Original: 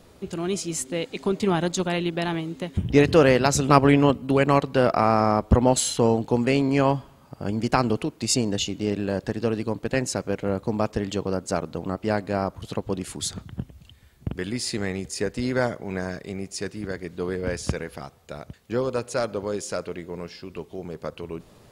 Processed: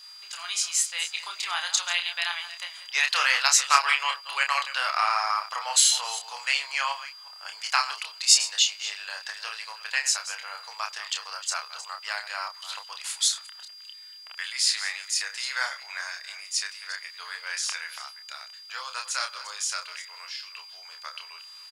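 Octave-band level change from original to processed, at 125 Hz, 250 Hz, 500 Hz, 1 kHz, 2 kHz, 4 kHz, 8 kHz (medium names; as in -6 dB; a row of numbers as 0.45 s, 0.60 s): under -40 dB, under -40 dB, -24.5 dB, -2.5 dB, +4.5 dB, +8.0 dB, +6.5 dB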